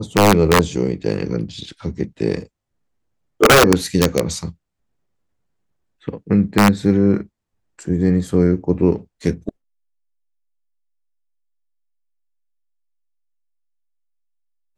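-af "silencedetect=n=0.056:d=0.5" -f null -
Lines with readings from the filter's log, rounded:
silence_start: 2.43
silence_end: 3.41 | silence_duration: 0.97
silence_start: 4.50
silence_end: 6.08 | silence_duration: 1.58
silence_start: 7.21
silence_end: 7.88 | silence_duration: 0.66
silence_start: 9.49
silence_end: 14.78 | silence_duration: 5.28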